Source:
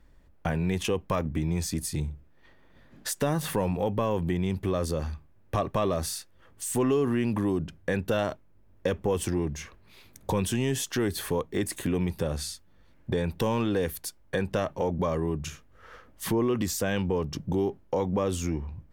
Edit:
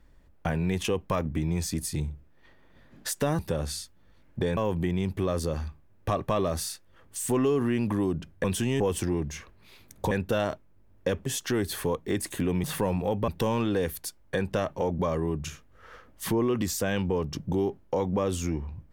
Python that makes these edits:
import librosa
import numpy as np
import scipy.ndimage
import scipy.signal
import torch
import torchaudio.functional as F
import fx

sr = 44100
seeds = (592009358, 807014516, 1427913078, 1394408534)

y = fx.edit(x, sr, fx.swap(start_s=3.39, length_s=0.64, other_s=12.1, other_length_s=1.18),
    fx.swap(start_s=7.9, length_s=1.15, other_s=10.36, other_length_s=0.36), tone=tone)